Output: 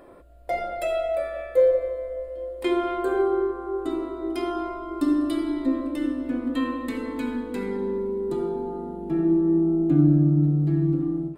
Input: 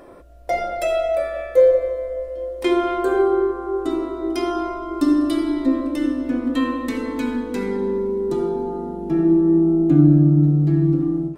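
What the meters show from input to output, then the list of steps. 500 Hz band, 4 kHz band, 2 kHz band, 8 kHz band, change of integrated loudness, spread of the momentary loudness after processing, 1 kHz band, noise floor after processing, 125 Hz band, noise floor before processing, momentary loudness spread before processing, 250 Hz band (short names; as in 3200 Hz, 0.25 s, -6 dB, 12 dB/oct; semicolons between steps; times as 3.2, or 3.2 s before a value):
-5.0 dB, -6.0 dB, -5.0 dB, n/a, -5.0 dB, 11 LU, -5.0 dB, -37 dBFS, -5.0 dB, -32 dBFS, 11 LU, -5.0 dB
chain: bell 5800 Hz -11.5 dB 0.3 oct; gain -5 dB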